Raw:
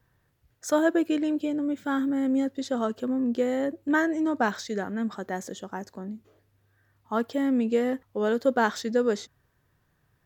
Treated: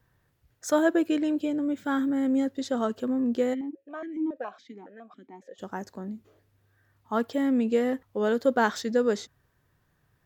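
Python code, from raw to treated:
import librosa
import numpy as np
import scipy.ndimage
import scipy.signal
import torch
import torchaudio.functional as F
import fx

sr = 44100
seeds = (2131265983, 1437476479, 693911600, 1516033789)

y = fx.vowel_held(x, sr, hz=7.2, at=(3.53, 5.58), fade=0.02)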